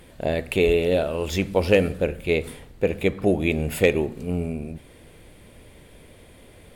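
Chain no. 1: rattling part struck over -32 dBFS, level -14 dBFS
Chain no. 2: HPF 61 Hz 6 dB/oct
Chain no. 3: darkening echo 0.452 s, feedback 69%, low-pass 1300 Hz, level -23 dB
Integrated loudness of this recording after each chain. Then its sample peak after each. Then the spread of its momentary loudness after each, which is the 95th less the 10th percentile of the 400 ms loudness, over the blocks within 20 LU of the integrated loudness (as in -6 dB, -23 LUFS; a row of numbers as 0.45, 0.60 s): -22.5, -23.5, -23.0 LUFS; -5.0, -4.0, -5.0 dBFS; 7, 10, 9 LU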